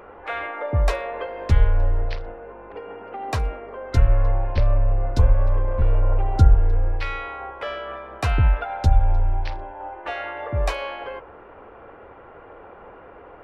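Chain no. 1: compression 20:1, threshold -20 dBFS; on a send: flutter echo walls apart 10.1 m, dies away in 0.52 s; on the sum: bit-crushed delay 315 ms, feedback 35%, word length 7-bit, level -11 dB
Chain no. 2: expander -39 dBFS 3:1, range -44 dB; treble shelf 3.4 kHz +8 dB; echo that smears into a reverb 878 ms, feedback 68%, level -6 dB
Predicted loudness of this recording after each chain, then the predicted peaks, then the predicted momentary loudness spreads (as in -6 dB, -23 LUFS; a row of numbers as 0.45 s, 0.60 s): -28.5 LUFS, -23.0 LUFS; -10.5 dBFS, -2.5 dBFS; 17 LU, 11 LU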